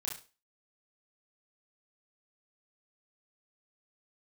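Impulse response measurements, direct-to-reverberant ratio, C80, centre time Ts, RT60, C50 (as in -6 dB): -4.5 dB, 14.0 dB, 33 ms, not exponential, 7.0 dB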